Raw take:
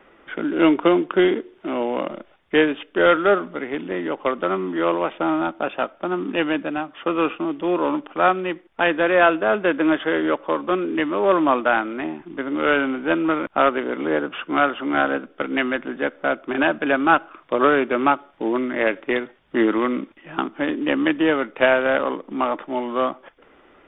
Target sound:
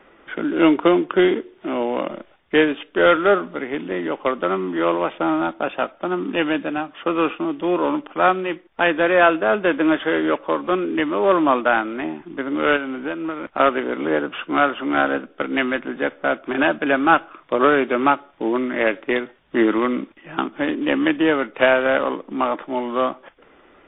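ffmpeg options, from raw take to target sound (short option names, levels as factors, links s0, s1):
-filter_complex "[0:a]asettb=1/sr,asplit=3[s0][s1][s2];[s0]atrim=end=12.764[s3];[s1]atrim=start=12.76:end=13.6,asetpts=PTS-STARTPTS,afade=t=in:d=0.004:c=qsin,afade=t=out:st=0.836:d=0.004:c=qsin,acompressor=threshold=0.0631:ratio=12[s4];[s2]atrim=start=13.596[s5];[s3][s4]acrossfade=d=0.004:c1=hsin:c2=qsin[s6];[s6][s5]acrossfade=d=0.004:c1=qsin:c2=hsin,volume=1.19" -ar 12000 -c:a libmp3lame -b:a 24k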